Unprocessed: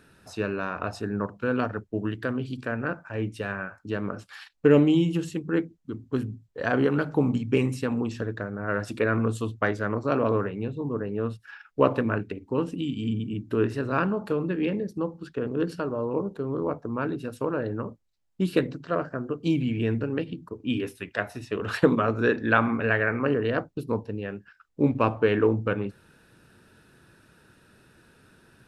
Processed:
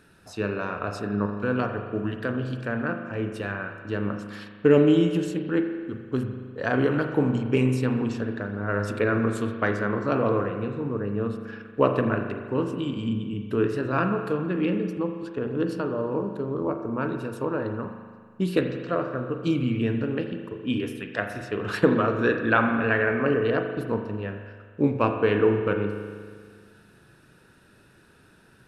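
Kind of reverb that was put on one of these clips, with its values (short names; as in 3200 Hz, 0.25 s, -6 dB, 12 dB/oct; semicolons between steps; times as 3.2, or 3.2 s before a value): spring tank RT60 1.8 s, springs 39 ms, chirp 50 ms, DRR 5.5 dB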